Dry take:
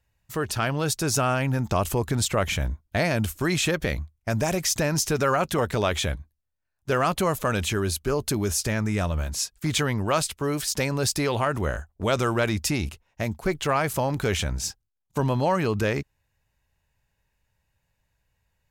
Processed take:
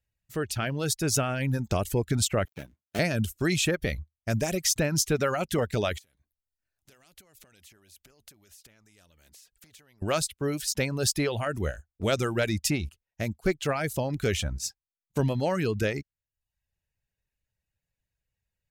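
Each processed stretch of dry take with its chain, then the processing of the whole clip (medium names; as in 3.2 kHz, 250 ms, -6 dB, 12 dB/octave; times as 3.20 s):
2.45–2.99 s: dead-time distortion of 0.29 ms + high-pass 180 Hz
5.98–10.02 s: compression 16:1, threshold -36 dBFS + spectrum-flattening compressor 2:1
whole clip: reverb removal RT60 0.61 s; peaking EQ 1 kHz -9.5 dB 0.78 oct; upward expansion 1.5:1, over -44 dBFS; trim +1 dB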